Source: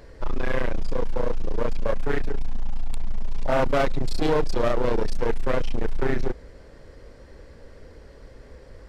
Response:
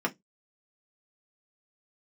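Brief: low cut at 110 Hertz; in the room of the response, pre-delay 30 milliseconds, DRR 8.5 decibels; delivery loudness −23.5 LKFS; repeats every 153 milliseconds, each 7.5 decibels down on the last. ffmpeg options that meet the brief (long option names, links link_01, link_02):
-filter_complex "[0:a]highpass=110,aecho=1:1:153|306|459|612|765:0.422|0.177|0.0744|0.0312|0.0131,asplit=2[link_01][link_02];[1:a]atrim=start_sample=2205,adelay=30[link_03];[link_02][link_03]afir=irnorm=-1:irlink=0,volume=-17.5dB[link_04];[link_01][link_04]amix=inputs=2:normalize=0,volume=3dB"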